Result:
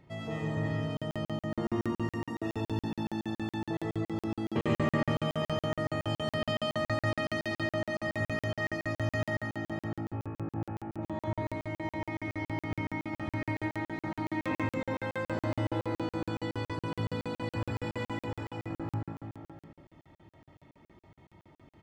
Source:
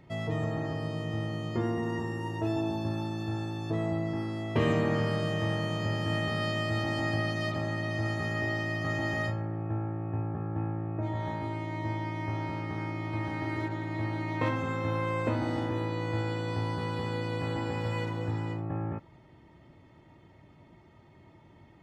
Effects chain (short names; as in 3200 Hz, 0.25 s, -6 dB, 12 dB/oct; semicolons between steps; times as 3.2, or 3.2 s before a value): tapped delay 72/95/141/523/733 ms -17/-5.5/-3.5/-9/-16.5 dB; reverb RT60 0.90 s, pre-delay 70 ms, DRR 4 dB; crackling interface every 0.14 s, samples 2048, zero, from 0.97; gain -4.5 dB